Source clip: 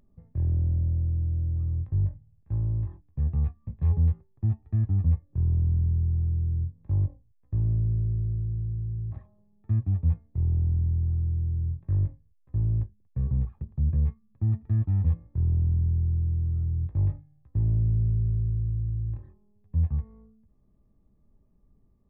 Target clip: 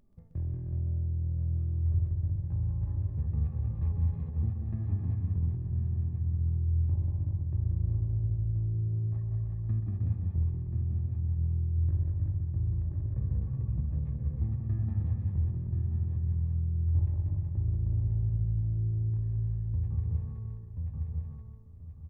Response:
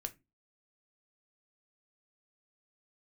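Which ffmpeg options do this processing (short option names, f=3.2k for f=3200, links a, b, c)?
-filter_complex "[0:a]asplit=2[a][b];[b]aecho=0:1:1030|2060|3090:0.473|0.104|0.0229[c];[a][c]amix=inputs=2:normalize=0,acompressor=threshold=-30dB:ratio=2.5,asplit=2[d][e];[e]aecho=0:1:129|188|311|373|516|892:0.335|0.631|0.501|0.562|0.266|0.141[f];[d][f]amix=inputs=2:normalize=0,volume=-2.5dB"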